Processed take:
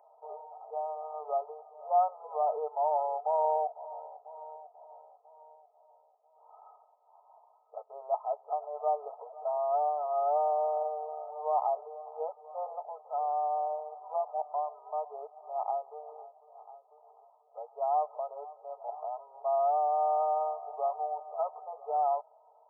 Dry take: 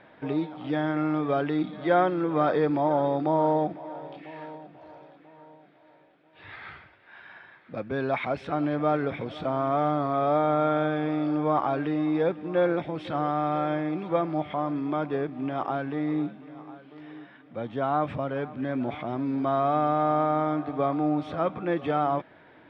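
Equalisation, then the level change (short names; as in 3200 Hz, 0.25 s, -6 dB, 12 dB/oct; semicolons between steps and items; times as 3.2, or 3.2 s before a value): brick-wall FIR band-pass 440–1300 Hz; fixed phaser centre 770 Hz, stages 8; 0.0 dB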